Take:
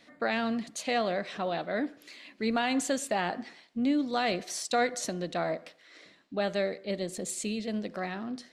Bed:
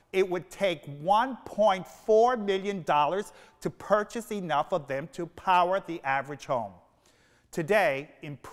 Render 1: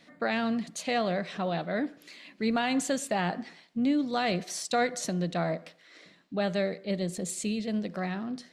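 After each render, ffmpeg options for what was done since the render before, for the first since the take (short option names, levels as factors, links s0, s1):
-af "equalizer=f=170:w=3.2:g=9"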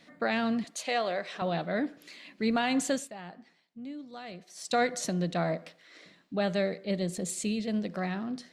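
-filter_complex "[0:a]asettb=1/sr,asplit=3[s0][s1][s2];[s0]atrim=end=0.644[s3];[s1]atrim=start=0.64:end=1.42,asetpts=PTS-STARTPTS,afade=t=in:d=0.004:c=qsin,afade=t=out:st=0.776:d=0.004:c=qsin,highpass=400[s4];[s2]atrim=start=1.416[s5];[s3][s4]acrossfade=d=0.004:c1=hsin:c2=qsin[s6];[s6][s5]acrossfade=d=0.004:c1=qsin:c2=hsin,asplit=3[s7][s8][s9];[s7]atrim=end=3.11,asetpts=PTS-STARTPTS,afade=t=out:st=2.94:d=0.17:silence=0.177828[s10];[s8]atrim=start=3.11:end=4.55,asetpts=PTS-STARTPTS,volume=0.178[s11];[s9]atrim=start=4.55,asetpts=PTS-STARTPTS,afade=t=in:d=0.17:silence=0.177828[s12];[s10][s11][s12]concat=n=3:v=0:a=1"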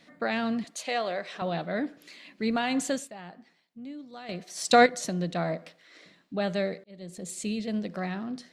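-filter_complex "[0:a]asplit=4[s0][s1][s2][s3];[s0]atrim=end=4.292[s4];[s1]atrim=start=4.288:end=4.862,asetpts=PTS-STARTPTS,volume=2.66[s5];[s2]atrim=start=4.858:end=6.84,asetpts=PTS-STARTPTS,afade=t=out:st=1.978:d=0.004:c=hsin[s6];[s3]atrim=start=6.84,asetpts=PTS-STARTPTS,afade=t=in:d=0.69[s7];[s4][s5]acrossfade=d=0.004:c1=hsin:c2=hsin[s8];[s6][s7]concat=n=2:v=0:a=1[s9];[s8][s9]acrossfade=d=0.004:c1=hsin:c2=hsin"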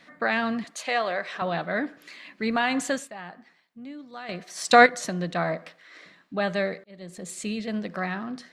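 -af "equalizer=f=1400:w=0.94:g=9.5,bandreject=f=1400:w=18"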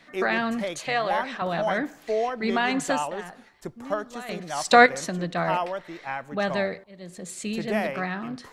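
-filter_complex "[1:a]volume=0.596[s0];[0:a][s0]amix=inputs=2:normalize=0"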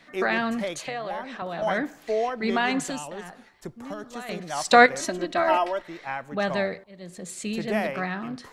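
-filter_complex "[0:a]asettb=1/sr,asplit=3[s0][s1][s2];[s0]atrim=end=0.854[s3];[s1]atrim=start=0.85:end=1.62,asetpts=PTS-STARTPTS,afade=t=in:d=0.004:c=qsin,afade=t=out:st=0.766:d=0.004:c=qsin,acrossover=split=210|670[s4][s5][s6];[s4]acompressor=threshold=0.00398:ratio=4[s7];[s5]acompressor=threshold=0.02:ratio=4[s8];[s6]acompressor=threshold=0.0158:ratio=4[s9];[s7][s8][s9]amix=inputs=3:normalize=0[s10];[s2]atrim=start=1.616[s11];[s3][s10]acrossfade=d=0.004:c1=hsin:c2=qsin[s12];[s12][s11]acrossfade=d=0.004:c1=qsin:c2=hsin,asettb=1/sr,asplit=3[s13][s14][s15];[s13]atrim=end=2.844[s16];[s14]atrim=start=2.84:end=4.04,asetpts=PTS-STARTPTS,afade=t=in:d=0.004:c=qsin,afade=t=out:st=1.196:d=0.004:c=qsin,acrossover=split=320|3000[s17][s18][s19];[s18]acompressor=threshold=0.0178:ratio=6:attack=3.2:release=140:knee=2.83:detection=peak[s20];[s17][s20][s19]amix=inputs=3:normalize=0[s21];[s15]atrim=start=4.036[s22];[s16][s21]acrossfade=d=0.004:c1=hsin:c2=qsin[s23];[s23][s22]acrossfade=d=0.004:c1=qsin:c2=hsin,asettb=1/sr,asplit=3[s24][s25][s26];[s24]atrim=end=4.994[s27];[s25]atrim=start=4.99:end=5.82,asetpts=PTS-STARTPTS,afade=t=in:d=0.004:c=qsin,afade=t=out:st=0.826:d=0.004:c=qsin,aecho=1:1:3.1:0.92,atrim=end_sample=36603[s28];[s26]atrim=start=5.816[s29];[s27][s28]acrossfade=d=0.004:c1=hsin:c2=qsin[s30];[s30][s29]acrossfade=d=0.004:c1=qsin:c2=hsin"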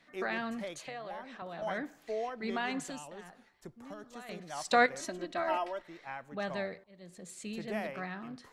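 -af "volume=0.299"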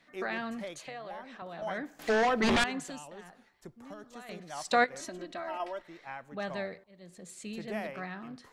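-filter_complex "[0:a]asettb=1/sr,asplit=3[s0][s1][s2];[s0]atrim=end=1.994[s3];[s1]atrim=start=1.99:end=2.64,asetpts=PTS-STARTPTS,afade=t=in:d=0.004:c=qsin,afade=t=out:st=0.646:d=0.004:c=qsin,aeval=exprs='0.0794*sin(PI/2*3.98*val(0)/0.0794)':c=same[s4];[s2]atrim=start=2.636[s5];[s3][s4]acrossfade=d=0.004:c1=hsin:c2=qsin[s6];[s6][s5]acrossfade=d=0.004:c1=qsin:c2=hsin,asettb=1/sr,asplit=3[s7][s8][s9];[s7]atrim=end=4.844[s10];[s8]atrim=start=4.84:end=5.6,asetpts=PTS-STARTPTS,afade=t=in:d=0.004:c=qsin,afade=t=out:st=0.756:d=0.004:c=qsin,acompressor=threshold=0.0126:ratio=2:attack=3.2:release=140:knee=1:detection=peak[s11];[s9]atrim=start=5.596[s12];[s10][s11]acrossfade=d=0.004:c1=hsin:c2=qsin[s13];[s13][s12]acrossfade=d=0.004:c1=qsin:c2=hsin"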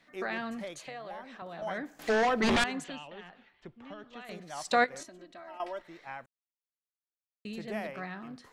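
-filter_complex "[0:a]asettb=1/sr,asplit=3[s0][s1][s2];[s0]atrim=end=2.844[s3];[s1]atrim=start=2.84:end=4.25,asetpts=PTS-STARTPTS,afade=t=in:d=0.004:c=qsin,afade=t=out:st=1.406:d=0.004:c=qsin,lowpass=f=3000:t=q:w=2.7[s4];[s2]atrim=start=4.246[s5];[s3][s4]acrossfade=d=0.004:c1=hsin:c2=qsin[s6];[s6][s5]acrossfade=d=0.004:c1=qsin:c2=hsin,asplit=5[s7][s8][s9][s10][s11];[s7]atrim=end=5.032[s12];[s8]atrim=start=5.028:end=5.602,asetpts=PTS-STARTPTS,volume=0.355[s13];[s9]atrim=start=5.598:end=6.26,asetpts=PTS-STARTPTS,afade=t=out:st=0.658:d=0.004:c=hsin[s14];[s10]atrim=start=6.26:end=7.45,asetpts=PTS-STARTPTS,volume=0[s15];[s11]atrim=start=7.45,asetpts=PTS-STARTPTS,afade=t=in:d=0.004:c=hsin[s16];[s12][s13]acrossfade=d=0.004:c1=hsin:c2=hsin[s17];[s14][s15][s16]concat=n=3:v=0:a=1[s18];[s17][s18]acrossfade=d=0.004:c1=hsin:c2=hsin"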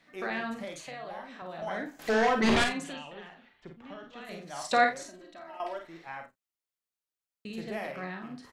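-filter_complex "[0:a]asplit=2[s0][s1];[s1]adelay=36,volume=0.316[s2];[s0][s2]amix=inputs=2:normalize=0,aecho=1:1:49|60:0.501|0.2"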